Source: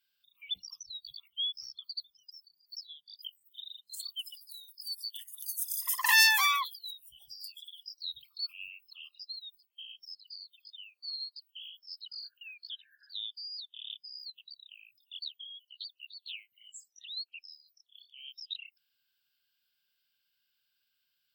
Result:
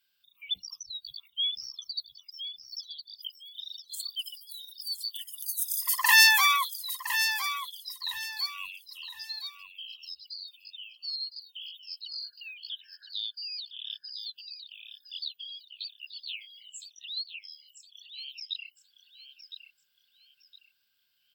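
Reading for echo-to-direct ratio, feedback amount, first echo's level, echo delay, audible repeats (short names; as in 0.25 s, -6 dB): -9.0 dB, 30%, -9.5 dB, 1.012 s, 3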